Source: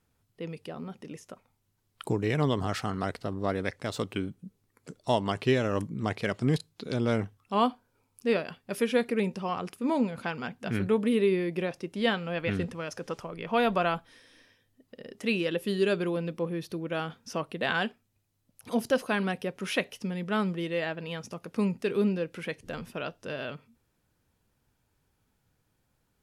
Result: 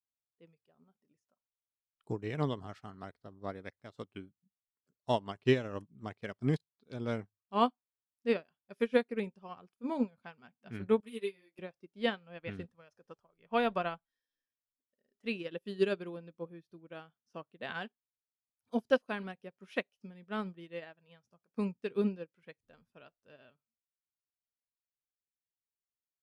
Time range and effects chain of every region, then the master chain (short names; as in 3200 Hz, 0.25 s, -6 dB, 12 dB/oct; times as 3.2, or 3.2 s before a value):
11–11.59 RIAA curve recording + ensemble effect
whole clip: spectral noise reduction 8 dB; high shelf 8800 Hz -11 dB; upward expander 2.5:1, over -42 dBFS